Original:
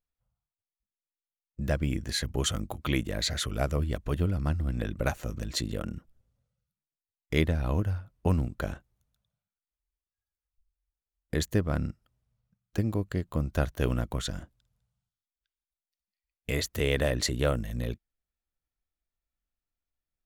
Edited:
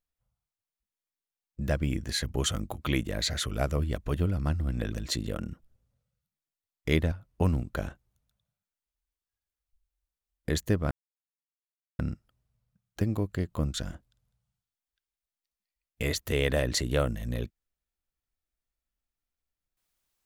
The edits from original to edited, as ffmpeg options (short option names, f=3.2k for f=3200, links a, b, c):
-filter_complex "[0:a]asplit=5[a][b][c][d][e];[a]atrim=end=4.922[f];[b]atrim=start=5.368:end=7.572[g];[c]atrim=start=7.968:end=11.76,asetpts=PTS-STARTPTS,afade=t=out:st=3.788:d=0.004:c=hsin,apad=pad_dur=1.08[h];[d]atrim=start=11.76:end=13.512,asetpts=PTS-STARTPTS,afade=t=in:d=0.004:c=hsin[i];[e]atrim=start=14.218[j];[f][g]acrossfade=d=0.004:c1=hsin:c2=hsin[k];[h][i]concat=n=2:v=0:a=1[l];[k][l]acrossfade=d=0.004:c1=hsin:c2=hsin[m];[m][j]acrossfade=d=0.004:c1=hsin:c2=hsin"